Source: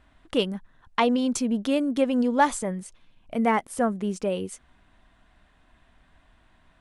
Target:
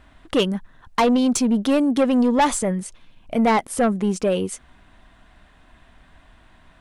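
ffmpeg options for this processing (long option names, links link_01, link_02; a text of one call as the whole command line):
ffmpeg -i in.wav -af "asoftclip=type=tanh:threshold=-20dB,volume=8dB" out.wav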